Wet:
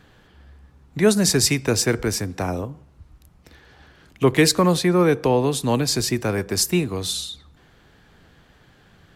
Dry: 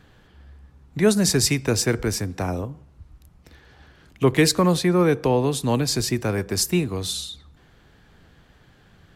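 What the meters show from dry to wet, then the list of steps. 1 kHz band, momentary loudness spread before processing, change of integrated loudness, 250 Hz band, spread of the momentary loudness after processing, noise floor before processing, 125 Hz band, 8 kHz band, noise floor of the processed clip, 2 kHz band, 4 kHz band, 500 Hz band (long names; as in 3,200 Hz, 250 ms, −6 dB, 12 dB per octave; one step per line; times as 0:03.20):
+2.0 dB, 10 LU, +1.5 dB, +1.0 dB, 11 LU, −55 dBFS, 0.0 dB, +2.0 dB, −55 dBFS, +2.0 dB, +2.0 dB, +1.5 dB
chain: low-shelf EQ 150 Hz −4 dB
level +2 dB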